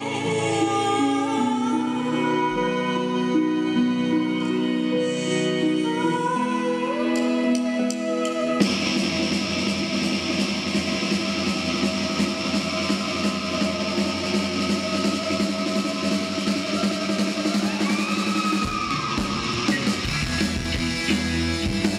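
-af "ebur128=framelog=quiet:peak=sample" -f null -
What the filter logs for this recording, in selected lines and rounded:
Integrated loudness:
  I:         -23.1 LUFS
  Threshold: -33.1 LUFS
Loudness range:
  LRA:         0.9 LU
  Threshold: -43.1 LUFS
  LRA low:   -23.6 LUFS
  LRA high:  -22.6 LUFS
Sample peak:
  Peak:       -6.4 dBFS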